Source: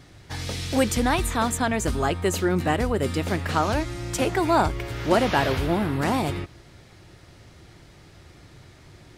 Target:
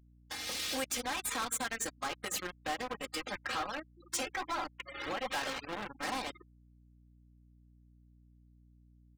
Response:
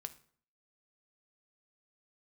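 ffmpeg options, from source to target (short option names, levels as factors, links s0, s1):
-filter_complex "[0:a]acompressor=threshold=0.0398:ratio=10,highpass=f=1200:p=1,aecho=1:1:3.8:0.92,asplit=2[s0][s1];[s1]adelay=163.3,volume=0.0447,highshelf=f=4000:g=-3.67[s2];[s0][s2]amix=inputs=2:normalize=0[s3];[1:a]atrim=start_sample=2205,afade=t=out:st=0.22:d=0.01,atrim=end_sample=10143,asetrate=37044,aresample=44100[s4];[s3][s4]afir=irnorm=-1:irlink=0,acrusher=bits=5:mix=0:aa=0.5,asplit=3[s5][s6][s7];[s5]afade=t=out:st=3.19:d=0.02[s8];[s6]flanger=delay=2.9:depth=9.5:regen=45:speed=1.3:shape=sinusoidal,afade=t=in:st=3.19:d=0.02,afade=t=out:st=5.3:d=0.02[s9];[s7]afade=t=in:st=5.3:d=0.02[s10];[s8][s9][s10]amix=inputs=3:normalize=0,afftfilt=real='re*gte(hypot(re,im),0.00631)':imag='im*gte(hypot(re,im),0.00631)':win_size=1024:overlap=0.75,asoftclip=type=hard:threshold=0.0112,dynaudnorm=f=410:g=3:m=1.88,aeval=exprs='val(0)+0.000631*(sin(2*PI*60*n/s)+sin(2*PI*2*60*n/s)/2+sin(2*PI*3*60*n/s)/3+sin(2*PI*4*60*n/s)/4+sin(2*PI*5*60*n/s)/5)':c=same,volume=1.5"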